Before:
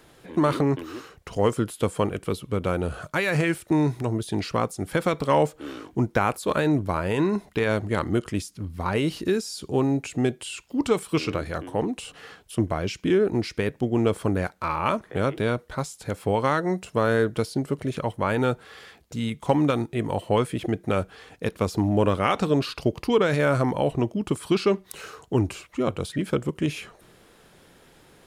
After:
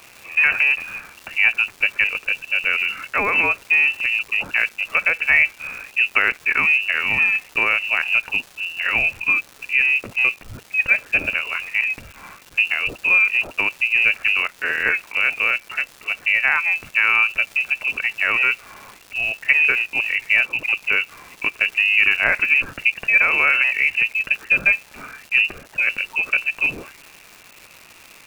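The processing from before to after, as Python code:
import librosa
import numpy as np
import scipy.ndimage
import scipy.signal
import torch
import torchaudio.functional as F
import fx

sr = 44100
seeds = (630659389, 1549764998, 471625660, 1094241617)

y = fx.freq_invert(x, sr, carrier_hz=2800)
y = fx.dmg_crackle(y, sr, seeds[0], per_s=490.0, level_db=-36.0)
y = F.gain(torch.from_numpy(y), 4.5).numpy()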